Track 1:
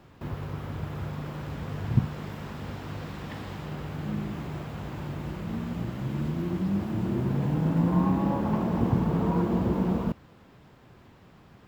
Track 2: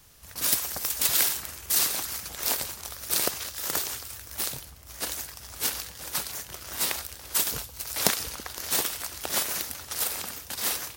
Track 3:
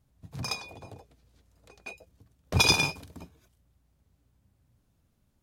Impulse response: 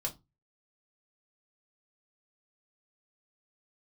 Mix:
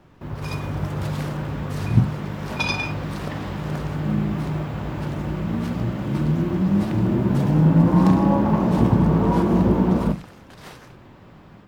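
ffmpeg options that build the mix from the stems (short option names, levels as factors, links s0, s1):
-filter_complex "[0:a]dynaudnorm=f=290:g=3:m=2.24,volume=0.75,asplit=2[s0][s1];[s1]volume=0.501[s2];[1:a]aemphasis=mode=reproduction:type=75fm,volume=0.531[s3];[2:a]bandpass=f=1700:t=q:w=0.66:csg=0,volume=0.75,asplit=2[s4][s5];[s5]volume=0.794[s6];[3:a]atrim=start_sample=2205[s7];[s2][s6]amix=inputs=2:normalize=0[s8];[s8][s7]afir=irnorm=-1:irlink=0[s9];[s0][s3][s4][s9]amix=inputs=4:normalize=0,highshelf=f=3600:g=-7"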